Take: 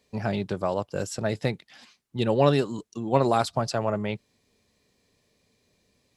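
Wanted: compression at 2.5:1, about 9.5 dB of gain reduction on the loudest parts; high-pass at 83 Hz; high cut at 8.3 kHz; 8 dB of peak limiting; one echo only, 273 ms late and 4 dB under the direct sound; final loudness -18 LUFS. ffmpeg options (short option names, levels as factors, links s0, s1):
-af "highpass=83,lowpass=8300,acompressor=threshold=0.0355:ratio=2.5,alimiter=limit=0.0668:level=0:latency=1,aecho=1:1:273:0.631,volume=7.08"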